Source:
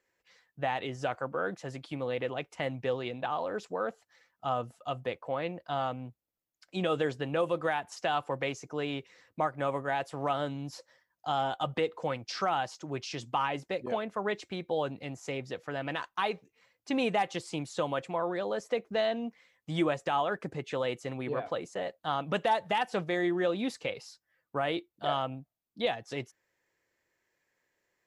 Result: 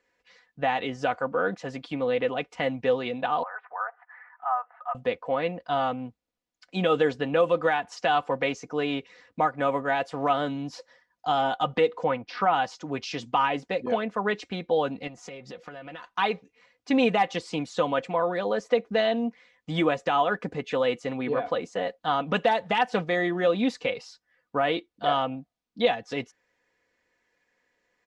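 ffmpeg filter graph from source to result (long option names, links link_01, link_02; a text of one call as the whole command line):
ffmpeg -i in.wav -filter_complex "[0:a]asettb=1/sr,asplit=3[link_01][link_02][link_03];[link_01]atrim=end=3.434[link_04];[link_02]atrim=start=3.43:end=4.95,asetpts=PTS-STARTPTS,afade=type=in:duration=0.004:curve=qsin,afade=type=out:start_time=1.516:duration=0.004:curve=qsin,asuperpass=centerf=1200:order=8:qfactor=1,acompressor=mode=upward:threshold=-42dB:ratio=2.5:attack=3.2:release=140:knee=2.83:detection=peak[link_05];[link_03]atrim=start=4.946[link_06];[link_04][link_05]acrossfade=duration=0.004:curve1=hsin:curve2=qsin[link_07];[link_07][link_06]acrossfade=duration=0.004:curve1=qsin:curve2=hsin,asettb=1/sr,asplit=3[link_08][link_09][link_10];[link_08]atrim=end=12.044[link_11];[link_09]atrim=start=12.04:end=12.54,asetpts=PTS-STARTPTS,afade=type=in:duration=0.004:curve=qsin,afade=type=out:start_time=0.496:duration=0.004:curve=qsin,lowpass=2700,equalizer=frequency=950:width_type=o:width=0.33:gain=4.5[link_12];[link_10]atrim=start=12.536[link_13];[link_11][link_12]acrossfade=duration=0.004:curve1=hsin:curve2=qsin[link_14];[link_14][link_13]acrossfade=duration=0.004:curve1=qsin:curve2=hsin,asettb=1/sr,asplit=3[link_15][link_16][link_17];[link_15]atrim=end=15.074[link_18];[link_16]atrim=start=15.07:end=16.06,asetpts=PTS-STARTPTS,afade=type=in:duration=0.004:curve=qsin,afade=type=out:start_time=0.986:duration=0.004:curve=qsin,acompressor=threshold=-42dB:ratio=12:attack=3.2:release=140:knee=1:detection=peak,aecho=1:1:5.6:0.41,atrim=end_sample=43659[link_19];[link_17]atrim=start=16.056[link_20];[link_18][link_19]acrossfade=duration=0.004:curve1=hsin:curve2=qsin[link_21];[link_21][link_20]acrossfade=duration=0.004:curve1=qsin:curve2=hsin,lowpass=5500,aecho=1:1:4.1:0.47,volume=5dB" out.wav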